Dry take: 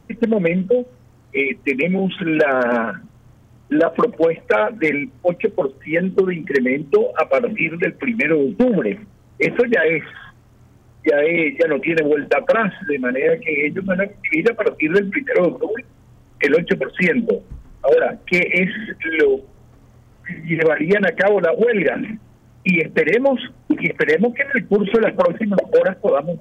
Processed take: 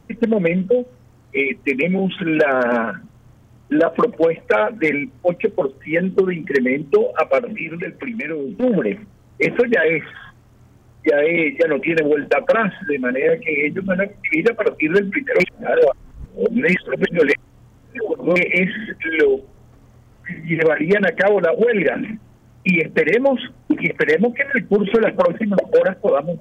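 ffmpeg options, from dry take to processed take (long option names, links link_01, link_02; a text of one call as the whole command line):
ffmpeg -i in.wav -filter_complex "[0:a]asplit=3[link_01][link_02][link_03];[link_01]afade=type=out:start_time=7.39:duration=0.02[link_04];[link_02]acompressor=threshold=-24dB:ratio=3:attack=3.2:release=140:knee=1:detection=peak,afade=type=in:start_time=7.39:duration=0.02,afade=type=out:start_time=8.62:duration=0.02[link_05];[link_03]afade=type=in:start_time=8.62:duration=0.02[link_06];[link_04][link_05][link_06]amix=inputs=3:normalize=0,asplit=3[link_07][link_08][link_09];[link_07]atrim=end=15.402[link_10];[link_08]atrim=start=15.398:end=18.362,asetpts=PTS-STARTPTS,areverse[link_11];[link_09]atrim=start=18.358[link_12];[link_10][link_11]acrossfade=duration=0.004:curve1=hsin:curve2=hsin[link_13];[link_13][link_12]acrossfade=duration=0.004:curve1=hsin:curve2=hsin" out.wav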